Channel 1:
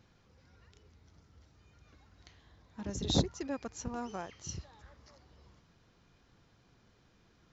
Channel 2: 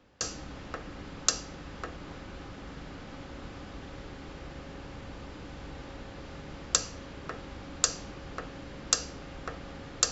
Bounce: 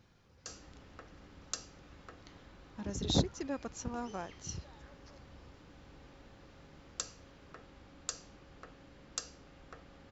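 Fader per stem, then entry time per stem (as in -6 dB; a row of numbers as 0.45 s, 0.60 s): -0.5 dB, -13.5 dB; 0.00 s, 0.25 s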